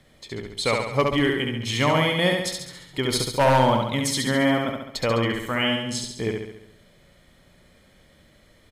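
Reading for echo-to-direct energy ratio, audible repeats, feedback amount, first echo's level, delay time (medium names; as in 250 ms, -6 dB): -2.0 dB, 7, 55%, -3.5 dB, 69 ms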